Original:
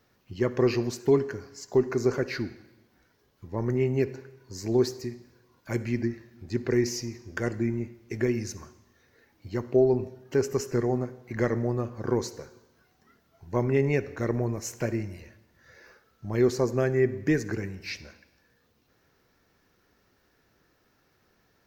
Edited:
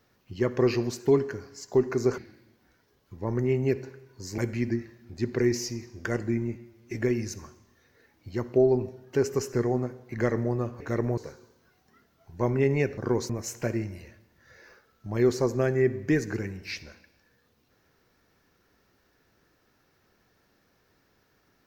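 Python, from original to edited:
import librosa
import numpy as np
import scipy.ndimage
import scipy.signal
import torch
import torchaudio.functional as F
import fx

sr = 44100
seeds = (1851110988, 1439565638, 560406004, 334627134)

y = fx.edit(x, sr, fx.cut(start_s=2.18, length_s=0.31),
    fx.cut(start_s=4.69, length_s=1.01),
    fx.stretch_span(start_s=7.87, length_s=0.27, factor=1.5),
    fx.swap(start_s=11.99, length_s=0.32, other_s=14.11, other_length_s=0.37), tone=tone)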